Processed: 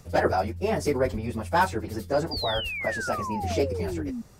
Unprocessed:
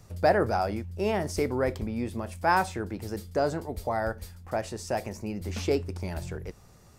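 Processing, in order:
hard clipping −15 dBFS, distortion −24 dB
time stretch by phase vocoder 0.63×
sound drawn into the spectrogram fall, 0:02.31–0:04.22, 220–4,900 Hz −38 dBFS
level +5.5 dB

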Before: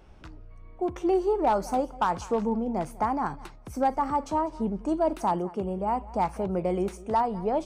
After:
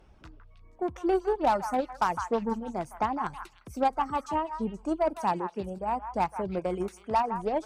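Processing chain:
harmonic generator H 3 −19 dB, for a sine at −16 dBFS
reverb reduction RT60 0.95 s
echo through a band-pass that steps 159 ms, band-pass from 1,300 Hz, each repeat 1.4 octaves, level −5 dB

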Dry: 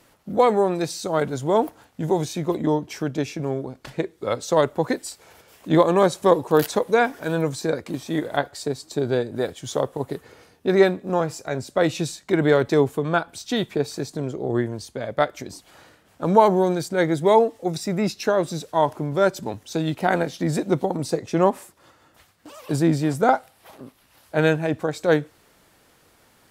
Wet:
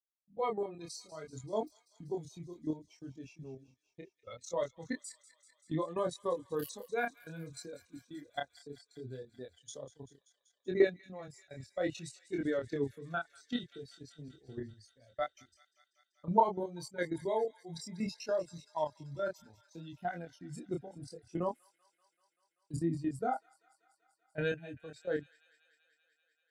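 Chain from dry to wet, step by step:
spectral dynamics exaggerated over time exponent 2
output level in coarse steps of 13 dB
downward expander −47 dBFS
chorus effect 0.65 Hz, depth 7.4 ms
delay with a high-pass on its return 193 ms, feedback 76%, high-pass 2,300 Hz, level −16 dB
level −2.5 dB

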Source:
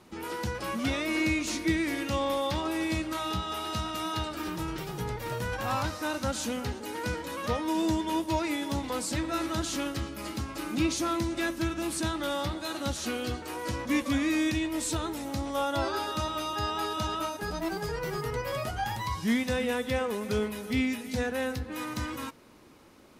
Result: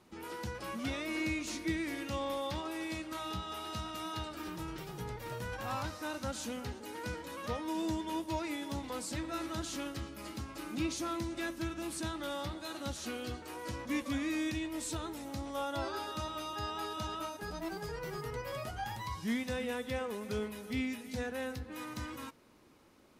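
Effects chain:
0:02.61–0:03.12: low-shelf EQ 180 Hz −8 dB
level −7.5 dB

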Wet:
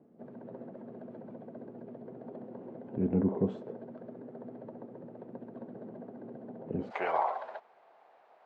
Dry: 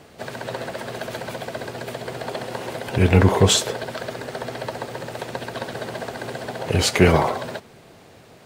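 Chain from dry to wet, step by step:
four-pole ladder band-pass 260 Hz, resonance 45%, from 0:06.90 930 Hz

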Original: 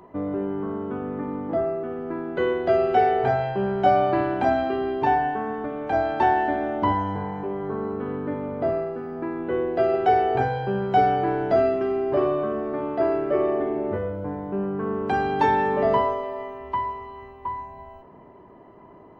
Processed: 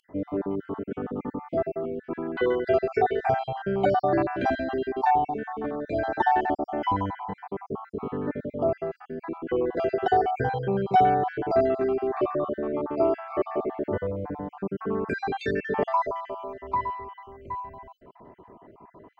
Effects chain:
time-frequency cells dropped at random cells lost 47%

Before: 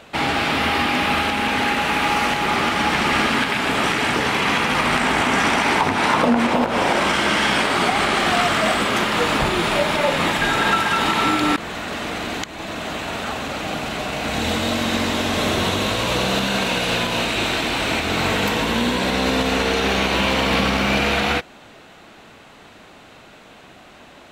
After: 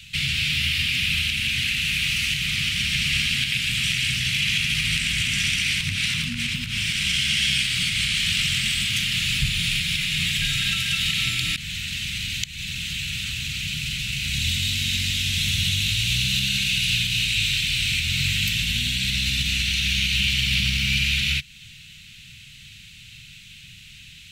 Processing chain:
Chebyshev band-stop filter 140–2,600 Hz, order 3
in parallel at 0 dB: downward compressor, threshold −35 dBFS, peak gain reduction 13.5 dB
on the sum: level +1 dB

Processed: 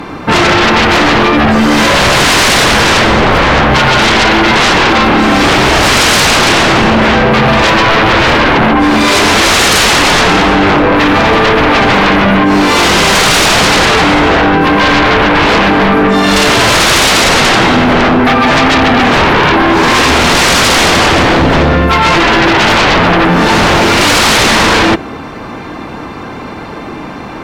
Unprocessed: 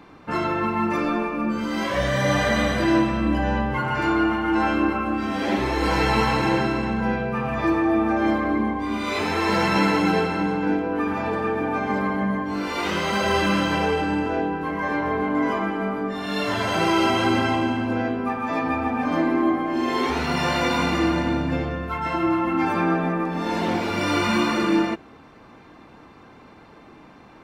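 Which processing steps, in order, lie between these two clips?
sine wavefolder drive 17 dB, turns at −7.5 dBFS
level +3 dB

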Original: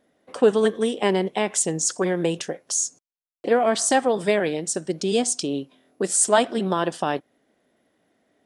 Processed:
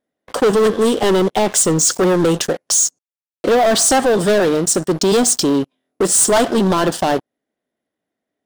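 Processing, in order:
leveller curve on the samples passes 5
dynamic equaliser 2,300 Hz, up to −6 dB, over −34 dBFS, Q 2.4
level −4 dB

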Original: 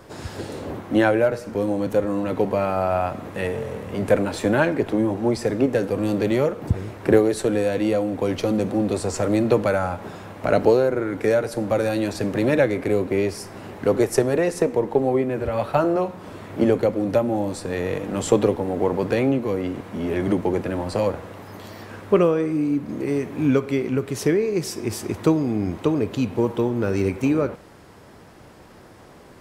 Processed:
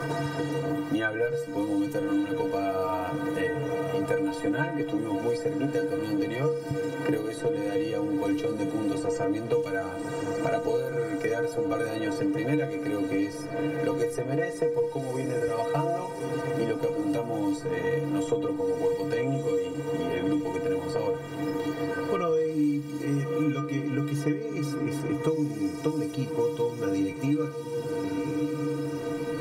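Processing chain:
stiff-string resonator 140 Hz, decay 0.43 s, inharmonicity 0.03
feedback delay with all-pass diffusion 1,197 ms, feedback 45%, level −12 dB
multiband upward and downward compressor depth 100%
level +5.5 dB

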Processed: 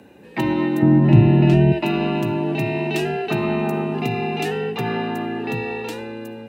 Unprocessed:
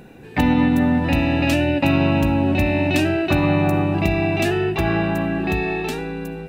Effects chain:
0:00.82–0:01.72: RIAA equalisation playback
frequency shifter +60 Hz
level −4 dB

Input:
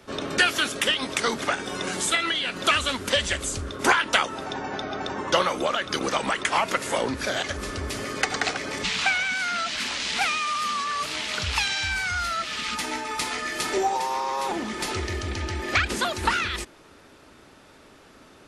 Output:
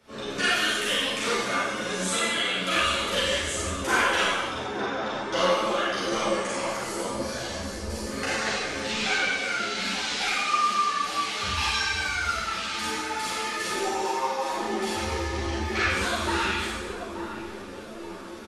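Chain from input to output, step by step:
gain on a spectral selection 0:06.21–0:08.06, 270–4,000 Hz −7 dB
reversed playback
upward compression, threshold −32 dBFS
reversed playback
double-tracking delay 38 ms −5 dB
feedback echo with a band-pass in the loop 880 ms, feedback 59%, band-pass 350 Hz, level −3.5 dB
four-comb reverb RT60 1.2 s, combs from 32 ms, DRR −7 dB
string-ensemble chorus
level −7 dB

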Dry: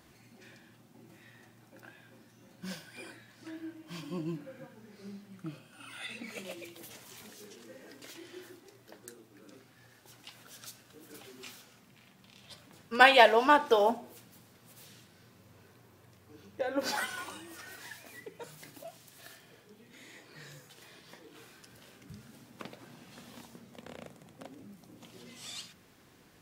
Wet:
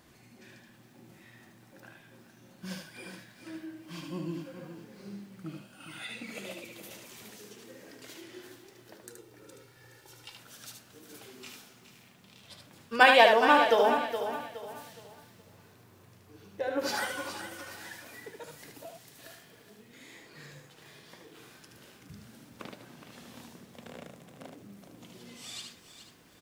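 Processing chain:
0:09.10–0:10.35: comb filter 2.2 ms, depth 67%
0:20.46–0:20.86: high-shelf EQ 4,200 Hz −7 dB
single-tap delay 75 ms −5 dB
feedback echo at a low word length 418 ms, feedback 35%, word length 10 bits, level −10 dB

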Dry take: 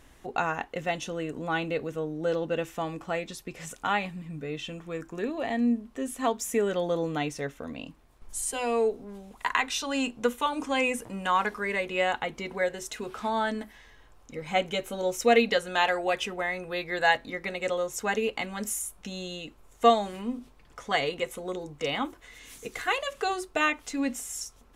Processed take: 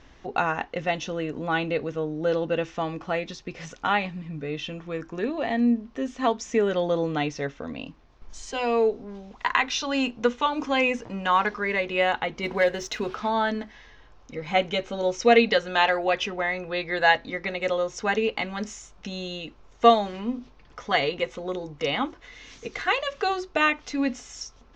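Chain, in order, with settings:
Butterworth low-pass 6,200 Hz 48 dB per octave
0:12.43–0:13.15: leveller curve on the samples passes 1
level +3.5 dB

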